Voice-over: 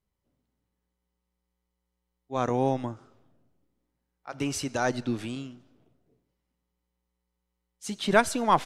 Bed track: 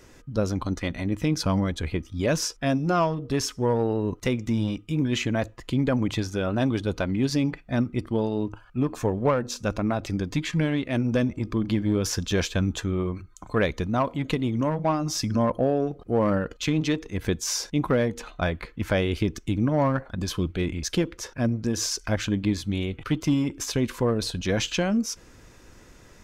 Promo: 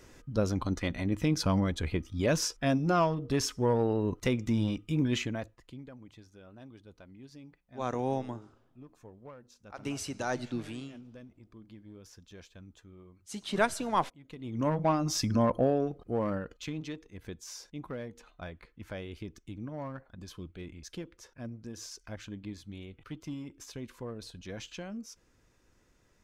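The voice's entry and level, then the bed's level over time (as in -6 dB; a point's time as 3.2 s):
5.45 s, -6.0 dB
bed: 5.11 s -3.5 dB
5.95 s -26.5 dB
14.23 s -26.5 dB
14.67 s -3 dB
15.64 s -3 dB
17.1 s -17 dB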